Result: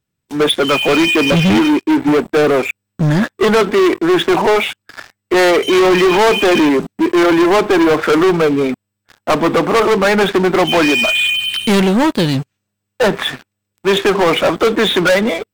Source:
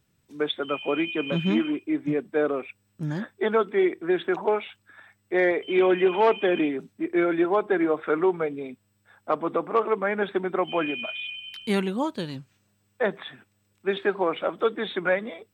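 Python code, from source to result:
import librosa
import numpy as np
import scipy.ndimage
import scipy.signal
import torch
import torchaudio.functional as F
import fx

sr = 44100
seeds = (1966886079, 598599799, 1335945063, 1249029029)

y = fx.leveller(x, sr, passes=5)
y = F.gain(torch.from_numpy(y), 3.0).numpy()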